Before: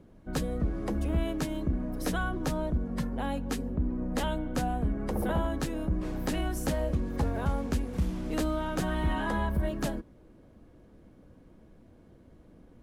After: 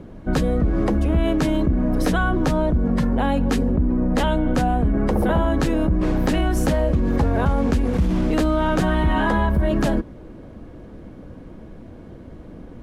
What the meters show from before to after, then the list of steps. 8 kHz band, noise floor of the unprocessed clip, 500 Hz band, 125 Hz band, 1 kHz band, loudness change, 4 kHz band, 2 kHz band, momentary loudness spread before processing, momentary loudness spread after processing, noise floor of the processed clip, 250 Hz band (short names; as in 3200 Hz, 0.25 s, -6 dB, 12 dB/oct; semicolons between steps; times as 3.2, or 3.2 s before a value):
+5.0 dB, -56 dBFS, +11.5 dB, +10.5 dB, +11.0 dB, +11.0 dB, +8.5 dB, +10.5 dB, 3 LU, 1 LU, -40 dBFS, +12.0 dB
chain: LPF 3800 Hz 6 dB/oct; in parallel at 0 dB: negative-ratio compressor -35 dBFS, ratio -1; on the sum: gain +7.5 dB